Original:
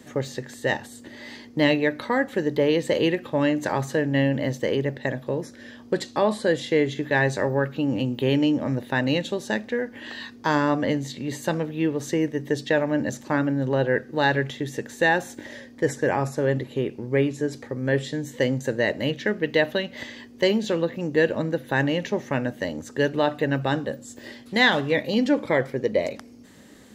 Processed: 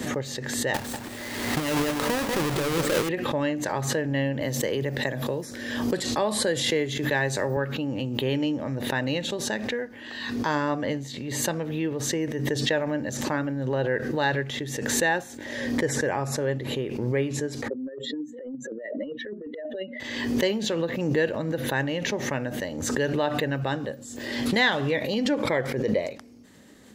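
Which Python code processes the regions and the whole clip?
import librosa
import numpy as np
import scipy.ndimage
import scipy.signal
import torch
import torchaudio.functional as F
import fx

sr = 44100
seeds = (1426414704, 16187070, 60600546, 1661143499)

y = fx.chain(x, sr, fx.halfwave_hold(),
    fx.over_compress(threshold_db=-21.0, ratio=-1.0),
    fx.echo_single(ms=193, db=-7.0), at=(0.74, 3.09))
y = fx.chain(y, sr, fx.high_shelf(hz=7900.0, db=11.0),
    fx.band_squash(depth_pct=40), at=(4.41, 7.57))
y = fx.chain(y, sr, fx.spec_expand(power=2.5),
    fx.steep_highpass(hz=240.0, slope=36),
    fx.over_compress(threshold_db=-29.0, ratio=-0.5), at=(17.68, 20.0))
y = fx.dynamic_eq(y, sr, hz=240.0, q=1.5, threshold_db=-38.0, ratio=4.0, max_db=-3)
y = fx.pre_swell(y, sr, db_per_s=39.0)
y = y * 10.0 ** (-3.5 / 20.0)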